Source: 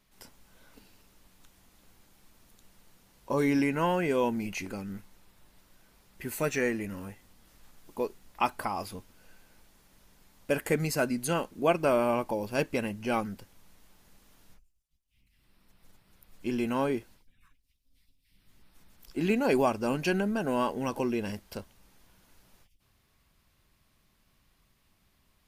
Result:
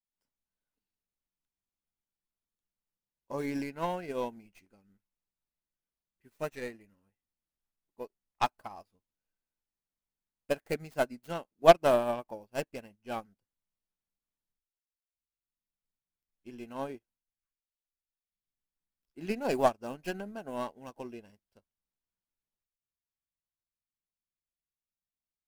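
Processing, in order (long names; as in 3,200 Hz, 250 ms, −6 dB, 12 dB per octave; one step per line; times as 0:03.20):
stylus tracing distortion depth 0.24 ms
dynamic equaliser 690 Hz, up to +6 dB, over −45 dBFS, Q 2.6
expander for the loud parts 2.5 to 1, over −43 dBFS
level +4.5 dB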